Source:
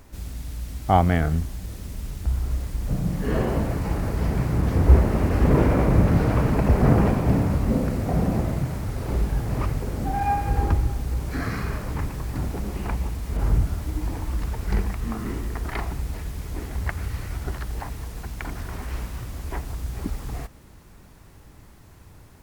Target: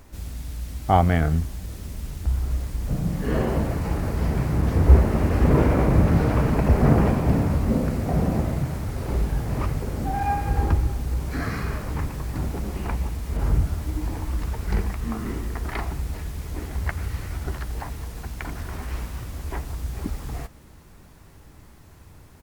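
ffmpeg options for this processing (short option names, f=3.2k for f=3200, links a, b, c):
-filter_complex "[0:a]asplit=2[a][b];[b]adelay=13,volume=-14dB[c];[a][c]amix=inputs=2:normalize=0"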